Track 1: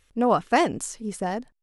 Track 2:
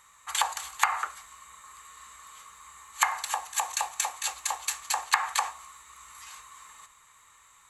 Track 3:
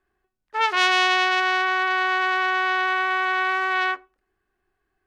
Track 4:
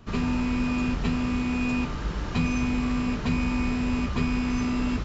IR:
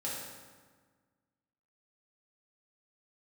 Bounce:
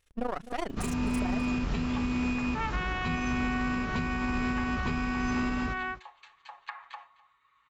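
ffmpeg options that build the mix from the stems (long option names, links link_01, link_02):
-filter_complex "[0:a]aeval=exprs='if(lt(val(0),0),0.251*val(0),val(0))':channel_layout=same,tremolo=f=27:d=0.889,volume=0.5dB,asplit=2[link_01][link_02];[link_02]volume=-17dB[link_03];[1:a]lowpass=frequency=3500:width=0.5412,lowpass=frequency=3500:width=1.3066,aecho=1:1:7.2:0.8,adelay=1550,volume=-18dB,asplit=2[link_04][link_05];[link_05]volume=-21dB[link_06];[2:a]lowpass=frequency=2700:width=0.5412,lowpass=frequency=2700:width=1.3066,adelay=2000,volume=-11dB[link_07];[3:a]tremolo=f=1.9:d=0.3,acompressor=mode=upward:threshold=-45dB:ratio=2.5,adelay=700,volume=-0.5dB,asplit=2[link_08][link_09];[link_09]volume=-17.5dB[link_10];[link_03][link_06][link_10]amix=inputs=3:normalize=0,aecho=0:1:255:1[link_11];[link_01][link_04][link_07][link_08][link_11]amix=inputs=5:normalize=0,alimiter=limit=-20.5dB:level=0:latency=1:release=125"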